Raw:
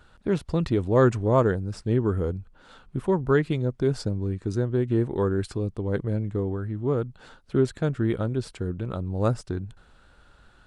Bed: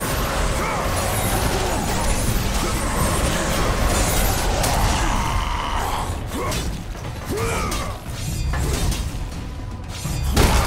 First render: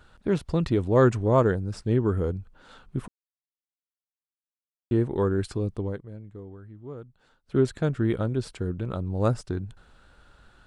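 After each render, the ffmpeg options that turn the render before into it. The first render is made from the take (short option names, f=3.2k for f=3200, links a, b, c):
-filter_complex "[0:a]asplit=5[a][b][c][d][e];[a]atrim=end=3.08,asetpts=PTS-STARTPTS,afade=t=out:st=3.076:d=0.004:c=hsin[f];[b]atrim=start=3.08:end=4.91,asetpts=PTS-STARTPTS,volume=0[g];[c]atrim=start=4.91:end=5.98,asetpts=PTS-STARTPTS,afade=t=in:d=0.004:c=hsin,afade=t=out:st=0.93:d=0.14:silence=0.188365[h];[d]atrim=start=5.98:end=7.44,asetpts=PTS-STARTPTS,volume=-14.5dB[i];[e]atrim=start=7.44,asetpts=PTS-STARTPTS,afade=t=in:d=0.14:silence=0.188365[j];[f][g][h][i][j]concat=n=5:v=0:a=1"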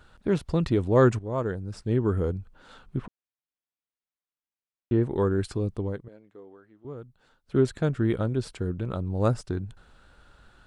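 -filter_complex "[0:a]asettb=1/sr,asplit=3[a][b][c];[a]atrim=end=2.984[d];[b]atrim=start=2.98:end=5.03,asetpts=PTS-STARTPTS,afade=t=in:d=0.004:c=qsin,afade=t=out:st=2.046:d=0.004:c=qsin,lowpass=3.4k[e];[c]atrim=start=5.026[f];[d][e]acrossfade=d=0.004:c1=hsin:c2=qsin[g];[g][f]acrossfade=d=0.004:c1=qsin:c2=hsin,asettb=1/sr,asplit=3[h][i][j];[h]atrim=end=6.084[k];[i]atrim=start=6.08:end=6.85,asetpts=PTS-STARTPTS,afade=t=in:d=0.004:c=qsin,afade=t=out:st=0.766:d=0.004:c=qsin,highpass=390,lowpass=6.2k[l];[j]atrim=start=6.846[m];[k][l]acrossfade=d=0.004:c1=hsin:c2=qsin[n];[n][m]acrossfade=d=0.004:c1=qsin:c2=hsin,asplit=2[o][p];[o]atrim=end=1.19,asetpts=PTS-STARTPTS,afade=t=out:st=1.186:d=0.004:c=hsin:silence=0.223872[q];[p]atrim=start=1.19,asetpts=PTS-STARTPTS,afade=t=in:d=0.96:silence=0.223872[r];[q][r]concat=n=2:v=0:a=1"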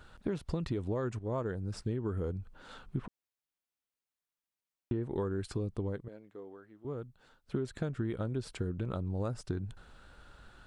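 -af "alimiter=limit=-16dB:level=0:latency=1:release=191,acompressor=threshold=-31dB:ratio=6"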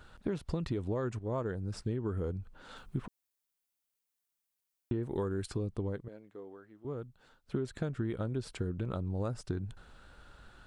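-filter_complex "[0:a]asettb=1/sr,asplit=3[a][b][c];[a]atrim=end=2.764[d];[b]atrim=start=2.76:end=5.46,asetpts=PTS-STARTPTS,afade=t=in:d=0.004:c=qsin,afade=t=out:st=2.696:d=0.004:c=qsin,highshelf=f=6.3k:g=10[e];[c]atrim=start=5.456[f];[d][e]acrossfade=d=0.004:c1=hsin:c2=qsin[g];[g][f]acrossfade=d=0.004:c1=qsin:c2=hsin"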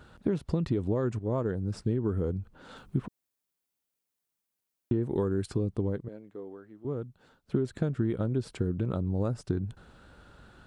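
-af "highpass=f=150:p=1,lowshelf=f=470:g=10.5"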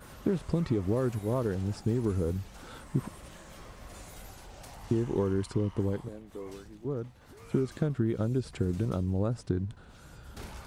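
-filter_complex "[1:a]volume=-28dB[a];[0:a][a]amix=inputs=2:normalize=0"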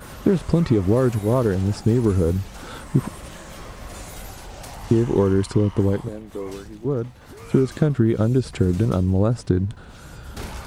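-af "volume=10.5dB"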